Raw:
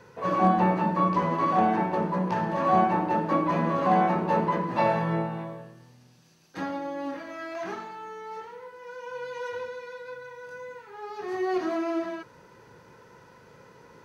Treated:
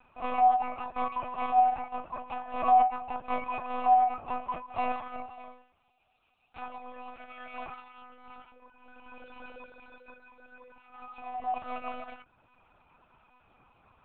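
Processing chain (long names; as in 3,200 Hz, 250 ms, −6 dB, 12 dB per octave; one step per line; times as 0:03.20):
reverb reduction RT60 0.61 s
formant filter a
tilt shelving filter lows −8 dB, about 880 Hz
one-pitch LPC vocoder at 8 kHz 250 Hz
level +5 dB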